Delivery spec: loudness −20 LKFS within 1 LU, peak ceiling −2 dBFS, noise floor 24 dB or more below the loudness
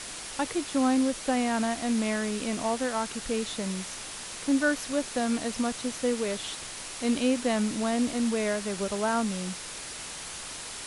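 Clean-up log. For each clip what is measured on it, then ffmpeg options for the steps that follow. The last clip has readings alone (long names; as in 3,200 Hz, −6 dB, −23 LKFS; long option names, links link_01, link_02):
background noise floor −40 dBFS; target noise floor −53 dBFS; integrated loudness −29.0 LKFS; sample peak −13.0 dBFS; target loudness −20.0 LKFS
→ -af "afftdn=noise_reduction=13:noise_floor=-40"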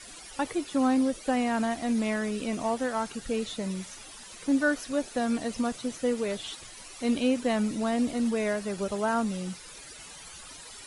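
background noise floor −46 dBFS; target noise floor −53 dBFS
→ -af "afftdn=noise_reduction=7:noise_floor=-46"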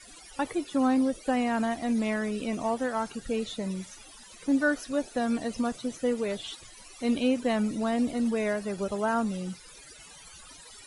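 background noise floor −50 dBFS; target noise floor −53 dBFS
→ -af "afftdn=noise_reduction=6:noise_floor=-50"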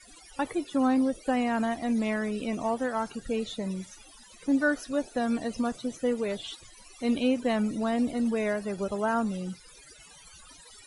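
background noise floor −53 dBFS; integrated loudness −29.0 LKFS; sample peak −14.0 dBFS; target loudness −20.0 LKFS
→ -af "volume=9dB"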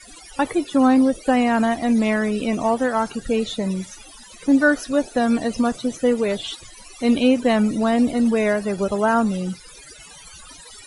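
integrated loudness −20.0 LKFS; sample peak −5.0 dBFS; background noise floor −44 dBFS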